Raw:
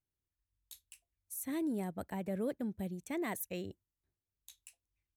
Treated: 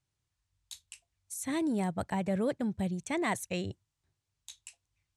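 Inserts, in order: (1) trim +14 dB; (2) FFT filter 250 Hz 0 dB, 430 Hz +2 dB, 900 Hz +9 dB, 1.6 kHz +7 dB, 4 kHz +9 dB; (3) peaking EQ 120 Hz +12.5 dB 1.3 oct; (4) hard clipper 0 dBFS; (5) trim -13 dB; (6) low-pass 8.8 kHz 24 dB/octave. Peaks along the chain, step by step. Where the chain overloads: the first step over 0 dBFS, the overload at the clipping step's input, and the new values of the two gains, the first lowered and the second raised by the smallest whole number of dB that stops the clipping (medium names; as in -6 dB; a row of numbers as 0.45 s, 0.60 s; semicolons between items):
-13.5 dBFS, -5.5 dBFS, -5.5 dBFS, -5.5 dBFS, -18.5 dBFS, -20.0 dBFS; nothing clips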